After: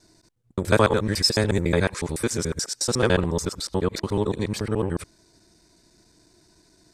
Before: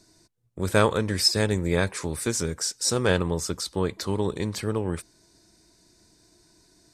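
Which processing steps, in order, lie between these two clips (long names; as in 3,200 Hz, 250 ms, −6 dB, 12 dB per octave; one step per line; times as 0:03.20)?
reversed piece by piece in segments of 72 ms
high-shelf EQ 5,300 Hz −4.5 dB
level +2.5 dB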